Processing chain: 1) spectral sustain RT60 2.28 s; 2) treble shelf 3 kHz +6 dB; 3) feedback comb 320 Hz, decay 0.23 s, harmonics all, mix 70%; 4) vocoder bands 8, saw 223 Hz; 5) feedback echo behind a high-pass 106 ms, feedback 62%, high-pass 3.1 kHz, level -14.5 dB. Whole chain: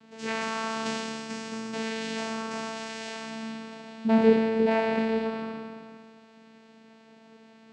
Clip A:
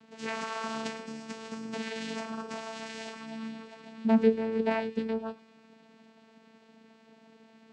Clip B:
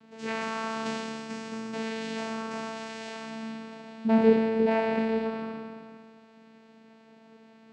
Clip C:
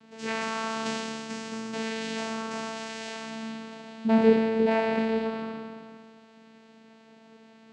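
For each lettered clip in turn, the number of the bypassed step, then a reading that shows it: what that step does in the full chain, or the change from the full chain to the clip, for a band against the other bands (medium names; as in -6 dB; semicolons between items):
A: 1, loudness change -4.0 LU; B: 2, 4 kHz band -3.5 dB; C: 5, echo-to-direct -22.0 dB to none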